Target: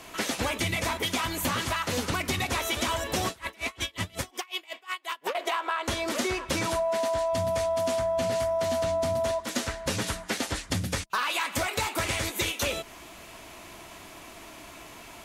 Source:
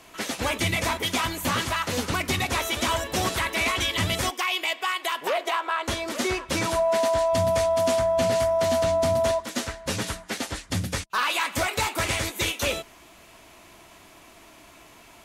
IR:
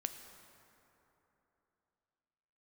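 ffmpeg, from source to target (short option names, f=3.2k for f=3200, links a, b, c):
-filter_complex "[0:a]acompressor=threshold=-31dB:ratio=4,asettb=1/sr,asplit=3[a][b][c];[a]atrim=end=3.294[d];[b]atrim=start=3.29:end=5.35,asetpts=PTS-STARTPTS,afade=t=in:d=0.004:c=qsin,afade=t=out:st=2.056:d=0.004:c=qsin,aeval=exprs='val(0)*pow(10,-28*(0.5-0.5*cos(2*PI*5.5*n/s))/20)':c=same[e];[c]atrim=start=5.346[f];[d][e]acrossfade=d=0.004:c1=hsin:c2=qsin[g];[g][f]acrossfade=d=0.004:c1=qsin:c2=hsin,volume=4.5dB"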